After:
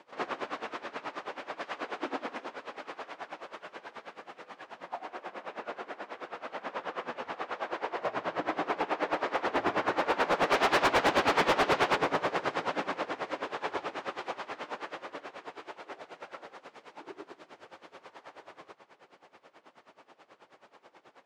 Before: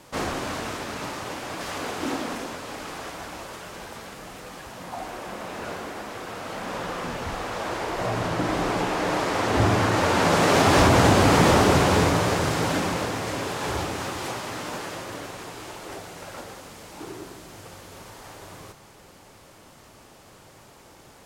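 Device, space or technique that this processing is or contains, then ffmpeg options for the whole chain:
helicopter radio: -filter_complex "[0:a]asettb=1/sr,asplit=3[link_01][link_02][link_03];[link_01]atrim=end=10.504[link_04];[link_02]atrim=start=10.5:end=11.96,asetpts=PTS-STARTPTS,afade=type=in:duration=0.004:curve=qsin,afade=type=out:start_time=1.456:duration=0.004:curve=qsin,equalizer=frequency=3700:width_type=o:width=2.8:gain=5[link_05];[link_03]atrim=start=11.956[link_06];[link_04][link_05]acrossfade=duration=0.004:curve1=hsin:curve2=qsin[link_07];[link_07][link_06]acrossfade=duration=0.004:curve1=qsin:curve2=hsin,highpass=370,lowpass=2900,aeval=exprs='val(0)*pow(10,-19*(0.5-0.5*cos(2*PI*9.3*n/s))/20)':channel_layout=same,asoftclip=type=hard:threshold=-20dB"

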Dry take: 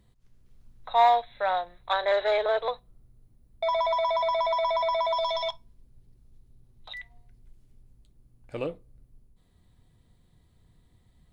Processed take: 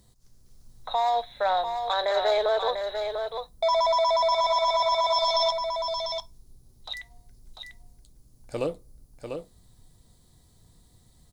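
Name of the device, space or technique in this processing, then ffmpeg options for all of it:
over-bright horn tweeter: -af "equalizer=frequency=760:width_type=o:width=1.6:gain=3,highshelf=frequency=3800:width_type=q:width=1.5:gain=11,alimiter=limit=-18dB:level=0:latency=1:release=26,aecho=1:1:695:0.473,volume=2dB"

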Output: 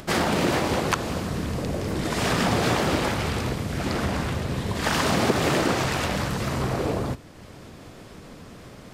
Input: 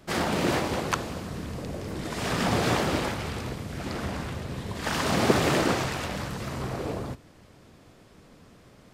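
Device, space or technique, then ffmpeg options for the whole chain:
upward and downward compression: -af "acompressor=mode=upward:threshold=-44dB:ratio=2.5,acompressor=threshold=-27dB:ratio=3,volume=7dB"

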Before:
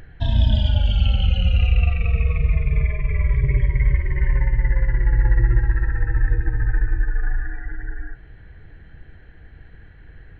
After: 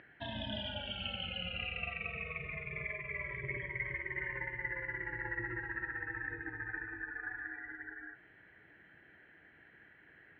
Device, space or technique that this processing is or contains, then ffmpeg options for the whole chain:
phone earpiece: -af "highpass=340,equalizer=frequency=470:width_type=q:width=4:gain=-7,equalizer=frequency=770:width_type=q:width=4:gain=-4,equalizer=frequency=1100:width_type=q:width=4:gain=-3,equalizer=frequency=2000:width_type=q:width=4:gain=4,lowpass=frequency=3100:width=0.5412,lowpass=frequency=3100:width=1.3066,volume=-5.5dB"

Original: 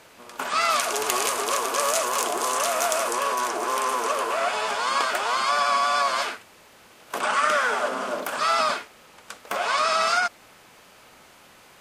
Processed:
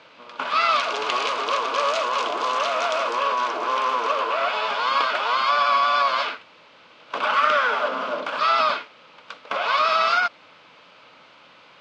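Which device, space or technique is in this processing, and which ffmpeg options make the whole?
kitchen radio: -filter_complex "[0:a]asettb=1/sr,asplit=3[link_01][link_02][link_03];[link_01]atrim=end=4.044[link_04];[link_02]atrim=start=4.04:end=4.7,asetpts=PTS-STARTPTS,afade=type=in:duration=0.004:curve=qsin,afade=type=out:start_time=0.656:duration=0.004:curve=qsin,highpass=130[link_05];[link_03]atrim=start=4.696[link_06];[link_04][link_05]acrossfade=duration=0.004:curve1=hsin:curve2=qsin[link_07];[link_07][link_06]acrossfade=duration=0.004:curve1=qsin:curve2=hsin,highpass=190,equalizer=frequency=220:width_type=q:width=4:gain=-7,equalizer=frequency=380:width_type=q:width=4:gain=-10,equalizer=frequency=750:width_type=q:width=4:gain=-7,equalizer=frequency=1800:width_type=q:width=4:gain=-7,lowpass=frequency=4100:width=0.5412,lowpass=frequency=4100:width=1.3066,volume=4.5dB"

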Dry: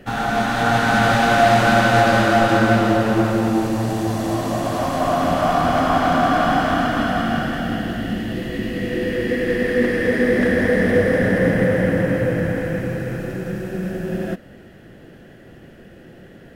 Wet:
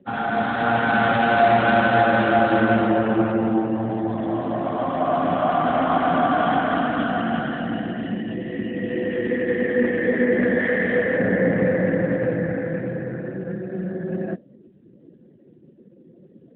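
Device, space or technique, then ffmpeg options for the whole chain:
mobile call with aggressive noise cancelling: -filter_complex "[0:a]asplit=3[link_01][link_02][link_03];[link_01]afade=type=out:start_time=10.58:duration=0.02[link_04];[link_02]tiltshelf=frequency=970:gain=-4.5,afade=type=in:start_time=10.58:duration=0.02,afade=type=out:start_time=11.16:duration=0.02[link_05];[link_03]afade=type=in:start_time=11.16:duration=0.02[link_06];[link_04][link_05][link_06]amix=inputs=3:normalize=0,highpass=140,afftdn=noise_reduction=23:noise_floor=-36,volume=-1.5dB" -ar 8000 -c:a libopencore_amrnb -b:a 12200

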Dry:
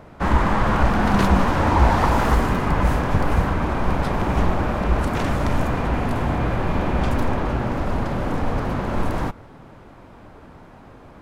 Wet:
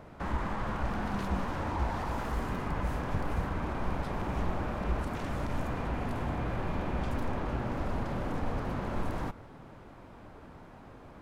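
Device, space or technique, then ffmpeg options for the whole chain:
de-esser from a sidechain: -filter_complex "[0:a]asplit=2[link_01][link_02];[link_02]highpass=frequency=6600:poles=1,apad=whole_len=494795[link_03];[link_01][link_03]sidechaincompress=threshold=-45dB:ratio=3:attack=1.1:release=61,volume=-6dB"

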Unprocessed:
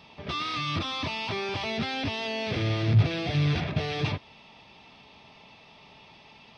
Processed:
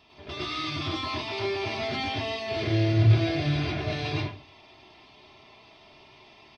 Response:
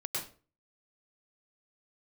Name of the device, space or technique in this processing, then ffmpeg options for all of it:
microphone above a desk: -filter_complex "[0:a]aecho=1:1:2.9:0.67[link_01];[1:a]atrim=start_sample=2205[link_02];[link_01][link_02]afir=irnorm=-1:irlink=0,volume=-4dB"

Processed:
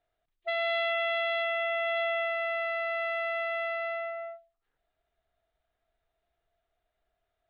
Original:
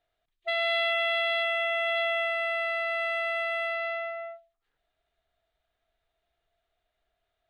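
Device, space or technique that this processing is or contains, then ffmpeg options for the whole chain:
through cloth: -af "highshelf=frequency=3500:gain=-12"

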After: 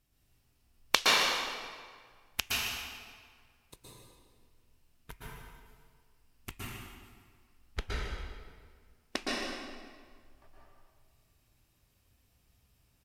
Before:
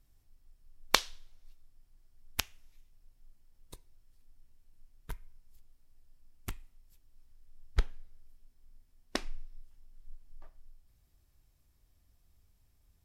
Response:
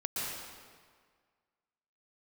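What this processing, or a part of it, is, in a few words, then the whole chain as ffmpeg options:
PA in a hall: -filter_complex "[0:a]highpass=frequency=100:poles=1,equalizer=frequency=2700:width_type=o:width=0.56:gain=5,aecho=1:1:154:0.299[link_01];[1:a]atrim=start_sample=2205[link_02];[link_01][link_02]afir=irnorm=-1:irlink=0"

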